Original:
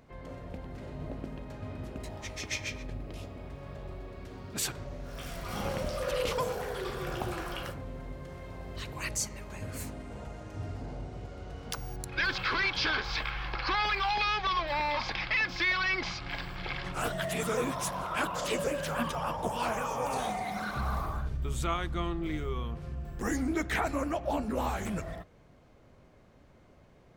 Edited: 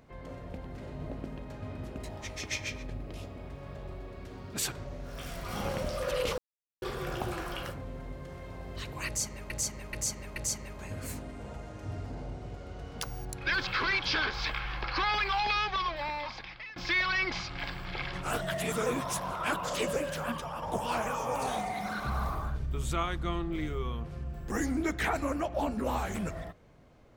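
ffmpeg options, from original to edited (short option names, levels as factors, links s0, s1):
-filter_complex "[0:a]asplit=8[s0][s1][s2][s3][s4][s5][s6][s7];[s0]atrim=end=6.38,asetpts=PTS-STARTPTS,afade=t=out:st=6.376:d=0.004:c=hsin[s8];[s1]atrim=start=6.38:end=6.82,asetpts=PTS-STARTPTS,volume=0[s9];[s2]atrim=start=6.82:end=9.502,asetpts=PTS-STARTPTS,afade=t=in:d=0.004:c=hsin[s10];[s3]atrim=start=9.068:end=9.502[s11];[s4]atrim=start=9.068:end=9.502[s12];[s5]atrim=start=9.068:end=15.47,asetpts=PTS-STARTPTS,afade=t=out:st=5.202:d=1.2:silence=0.0841395[s13];[s6]atrim=start=15.47:end=19.33,asetpts=PTS-STARTPTS,afade=t=in:d=0.004:c=hsin:silence=0.0841395,afade=t=out:st=3.2:d=0.66:silence=0.473151[s14];[s7]atrim=start=19.33,asetpts=PTS-STARTPTS,afade=t=in:d=0.004:c=hsin:silence=0.473151[s15];[s8][s9][s10]concat=n=3:v=0:a=1[s16];[s16][s11]acrossfade=d=0.004:c1=hsin:c2=hsin[s17];[s17][s12]acrossfade=d=0.004:c1=hsin:c2=hsin[s18];[s13][s14][s15]concat=n=3:v=0:a=1[s19];[s18][s19]acrossfade=d=0.004:c1=hsin:c2=hsin"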